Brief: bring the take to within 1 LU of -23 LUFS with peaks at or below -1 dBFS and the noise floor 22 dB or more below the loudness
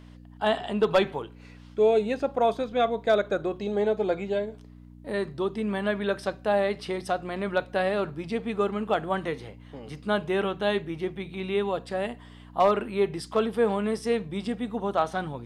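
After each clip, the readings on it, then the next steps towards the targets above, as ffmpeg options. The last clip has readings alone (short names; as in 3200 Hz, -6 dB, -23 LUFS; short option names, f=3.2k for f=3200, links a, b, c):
hum 60 Hz; harmonics up to 300 Hz; hum level -46 dBFS; loudness -27.5 LUFS; peak -12.5 dBFS; loudness target -23.0 LUFS
-> -af "bandreject=f=60:t=h:w=4,bandreject=f=120:t=h:w=4,bandreject=f=180:t=h:w=4,bandreject=f=240:t=h:w=4,bandreject=f=300:t=h:w=4"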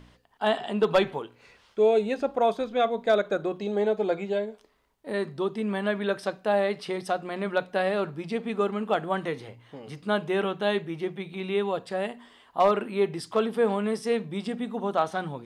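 hum none; loudness -27.5 LUFS; peak -12.5 dBFS; loudness target -23.0 LUFS
-> -af "volume=4.5dB"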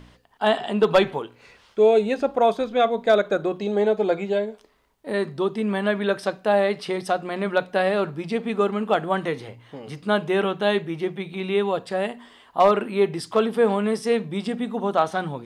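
loudness -23.0 LUFS; peak -8.0 dBFS; noise floor -56 dBFS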